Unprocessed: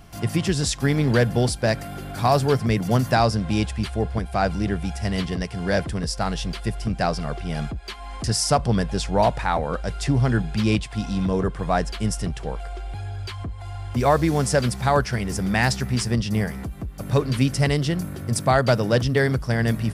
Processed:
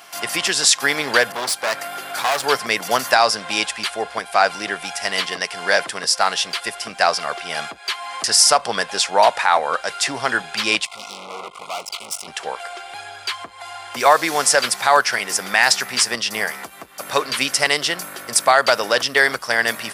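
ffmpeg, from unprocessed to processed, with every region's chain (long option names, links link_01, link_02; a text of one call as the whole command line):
ffmpeg -i in.wav -filter_complex "[0:a]asettb=1/sr,asplit=3[link_01][link_02][link_03];[link_01]atrim=end=1.324[link_04];[link_02]atrim=start=1.32:end=2.44,asetpts=PTS-STARTPTS,afade=type=in:duration=0.004:curve=qsin,afade=type=out:start_time=1.116:duration=0.004:curve=qsin,asoftclip=type=hard:threshold=-24dB,adynamicequalizer=threshold=0.00891:dfrequency=2300:dqfactor=0.7:tfrequency=2300:tqfactor=0.7:attack=5:release=100:ratio=0.375:range=1.5:mode=cutabove:tftype=highshelf[link_05];[link_03]atrim=start=2.436[link_06];[link_04][link_05]acrossfade=duration=0.004:curve1=hsin:curve2=qsin[link_07];[link_07][link_06]acrossfade=duration=0.004:curve1=qsin:curve2=hsin,asettb=1/sr,asplit=3[link_08][link_09][link_10];[link_08]atrim=end=10.854[link_11];[link_09]atrim=start=10.85:end=12.28,asetpts=PTS-STARTPTS,afade=type=in:duration=0.004:curve=qsin,afade=type=out:start_time=1.426:duration=0.004:curve=qsin,equalizer=frequency=290:width=3.6:gain=-9,aeval=exprs='(tanh(39.8*val(0)+0.8)-tanh(0.8))/39.8':channel_layout=same,asuperstop=centerf=1700:order=12:qfactor=2.7[link_12];[link_10]atrim=start=12.276[link_13];[link_11][link_12]acrossfade=duration=0.004:curve1=hsin:curve2=qsin[link_14];[link_14][link_13]acrossfade=duration=0.004:curve1=qsin:curve2=hsin,highpass=880,alimiter=level_in=13dB:limit=-1dB:release=50:level=0:latency=1,volume=-1dB" out.wav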